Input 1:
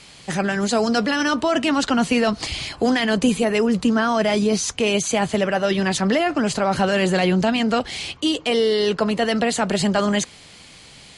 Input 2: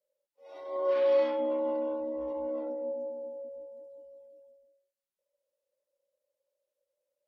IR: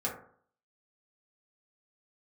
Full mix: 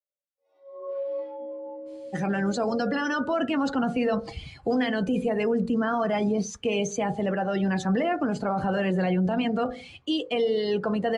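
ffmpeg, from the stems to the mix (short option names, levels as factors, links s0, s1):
-filter_complex "[0:a]adynamicequalizer=threshold=0.0158:dfrequency=2000:dqfactor=0.7:tfrequency=2000:tqfactor=0.7:attack=5:release=100:ratio=0.375:range=2.5:mode=cutabove:tftype=highshelf,adelay=1850,volume=0.473,asplit=2[s0][s1];[s1]volume=0.282[s2];[1:a]flanger=delay=4.9:depth=5.7:regen=69:speed=0.33:shape=sinusoidal,volume=0.841[s3];[2:a]atrim=start_sample=2205[s4];[s2][s4]afir=irnorm=-1:irlink=0[s5];[s0][s3][s5]amix=inputs=3:normalize=0,afftdn=nr=15:nf=-32,alimiter=limit=0.133:level=0:latency=1:release=24"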